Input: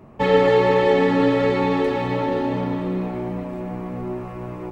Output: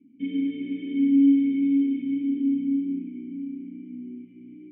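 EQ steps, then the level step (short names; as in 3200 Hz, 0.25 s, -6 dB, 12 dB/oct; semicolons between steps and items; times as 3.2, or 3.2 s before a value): vocal tract filter i; vowel filter i; bell 620 Hz -12 dB 0.28 oct; +5.5 dB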